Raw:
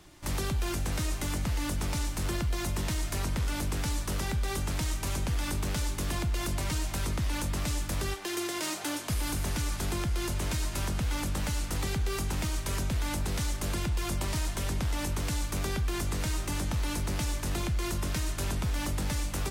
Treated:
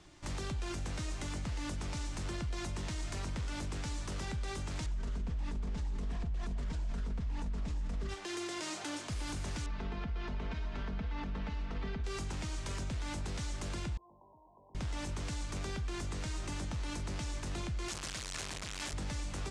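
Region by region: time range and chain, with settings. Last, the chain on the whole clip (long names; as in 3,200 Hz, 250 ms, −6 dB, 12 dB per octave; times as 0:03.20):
0:04.86–0:08.09: spectral tilt −2.5 dB per octave + comb filter 4.5 ms, depth 84% + highs frequency-modulated by the lows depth 0.46 ms
0:09.66–0:12.04: high-frequency loss of the air 310 metres + comb filter 4.5 ms, depth 69%
0:13.97–0:14.75: linear-phase brick-wall low-pass 1,100 Hz + first difference + envelope flattener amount 70%
0:17.88–0:18.93: sign of each sample alone + tilt shelving filter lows −5.5 dB, about 720 Hz
whole clip: low-pass filter 8,200 Hz 24 dB per octave; brickwall limiter −27.5 dBFS; level −3.5 dB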